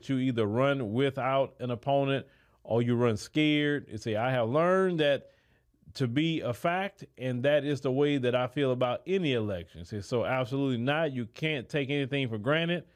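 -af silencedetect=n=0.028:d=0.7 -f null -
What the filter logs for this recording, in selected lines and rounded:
silence_start: 5.17
silence_end: 5.97 | silence_duration: 0.80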